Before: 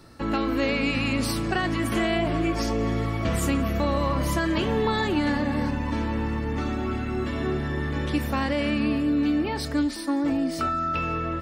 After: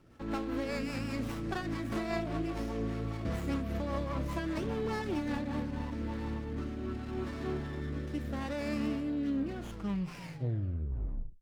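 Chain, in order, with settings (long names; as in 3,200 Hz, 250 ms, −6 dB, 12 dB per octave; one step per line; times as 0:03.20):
turntable brake at the end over 2.22 s
rotating-speaker cabinet horn 5 Hz, later 0.75 Hz, at 0:05.43
windowed peak hold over 9 samples
level −8 dB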